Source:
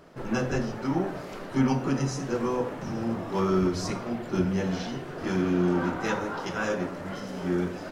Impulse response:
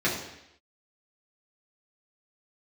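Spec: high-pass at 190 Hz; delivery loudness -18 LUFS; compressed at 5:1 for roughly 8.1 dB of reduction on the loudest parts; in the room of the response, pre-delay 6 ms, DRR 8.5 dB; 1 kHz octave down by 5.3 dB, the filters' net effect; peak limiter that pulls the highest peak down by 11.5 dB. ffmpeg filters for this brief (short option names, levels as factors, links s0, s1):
-filter_complex "[0:a]highpass=190,equalizer=f=1000:t=o:g=-7,acompressor=threshold=0.0282:ratio=5,alimiter=level_in=3.16:limit=0.0631:level=0:latency=1,volume=0.316,asplit=2[s0][s1];[1:a]atrim=start_sample=2205,adelay=6[s2];[s1][s2]afir=irnorm=-1:irlink=0,volume=0.0841[s3];[s0][s3]amix=inputs=2:normalize=0,volume=13.3"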